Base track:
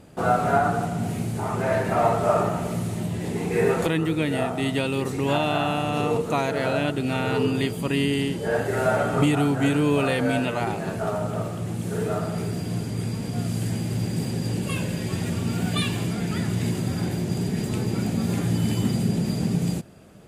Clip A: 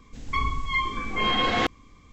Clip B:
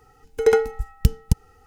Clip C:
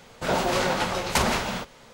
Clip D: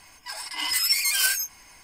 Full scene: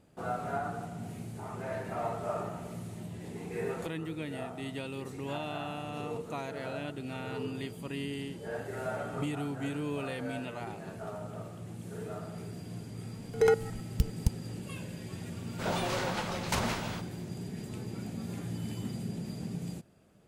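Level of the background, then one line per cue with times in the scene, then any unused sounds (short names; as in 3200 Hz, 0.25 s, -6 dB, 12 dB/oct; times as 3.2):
base track -14 dB
12.95 add B -1.5 dB + level quantiser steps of 20 dB
15.37 add C -9 dB
not used: A, D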